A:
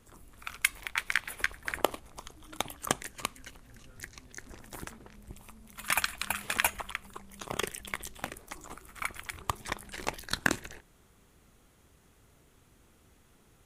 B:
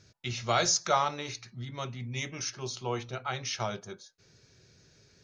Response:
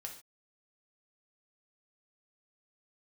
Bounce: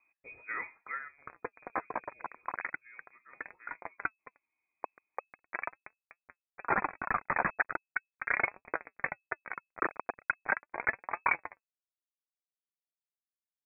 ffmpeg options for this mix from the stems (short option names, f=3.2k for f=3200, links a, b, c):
-filter_complex "[0:a]asplit=2[a][b];[b]highpass=f=720:p=1,volume=31dB,asoftclip=type=tanh:threshold=-4.5dB[c];[a][c]amix=inputs=2:normalize=0,lowpass=f=1.5k:p=1,volume=-6dB,acrusher=bits=2:mix=0:aa=0.5,adelay=800,volume=-3.5dB[d];[1:a]highshelf=f=8.4k:g=-11,volume=-6.5dB,afade=t=out:st=0.81:d=0.32:silence=0.266073,asplit=2[e][f];[f]apad=whole_len=637273[g];[d][g]sidechaincompress=threshold=-58dB:ratio=6:attack=8.3:release=291[h];[h][e]amix=inputs=2:normalize=0,lowshelf=f=61:g=-11,flanger=delay=0.6:depth=5.6:regen=60:speed=0.4:shape=triangular,lowpass=f=2.2k:t=q:w=0.5098,lowpass=f=2.2k:t=q:w=0.6013,lowpass=f=2.2k:t=q:w=0.9,lowpass=f=2.2k:t=q:w=2.563,afreqshift=-2600"